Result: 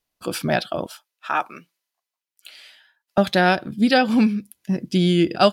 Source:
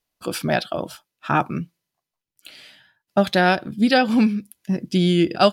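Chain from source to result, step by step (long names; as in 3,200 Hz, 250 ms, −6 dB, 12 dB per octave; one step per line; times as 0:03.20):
0:00.86–0:03.18: Bessel high-pass filter 770 Hz, order 2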